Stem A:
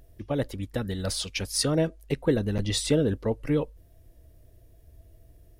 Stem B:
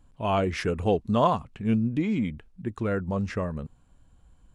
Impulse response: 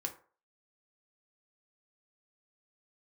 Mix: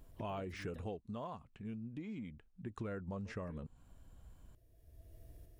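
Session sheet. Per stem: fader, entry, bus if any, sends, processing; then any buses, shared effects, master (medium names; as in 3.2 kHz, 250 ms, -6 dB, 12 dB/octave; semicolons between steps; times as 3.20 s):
-1.5 dB, 0.00 s, muted 0.82–3.25 s, no send, tremolo saw up 1.1 Hz, depth 40%; compression 2.5:1, threshold -39 dBFS, peak gain reduction 13 dB; auto duck -9 dB, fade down 1.20 s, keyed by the second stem
0.76 s -4 dB -> 1.23 s -13.5 dB -> 2.52 s -13.5 dB -> 2.81 s -2 dB, 0.00 s, no send, de-esser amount 100%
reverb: none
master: compression 4:1, threshold -42 dBFS, peak gain reduction 14.5 dB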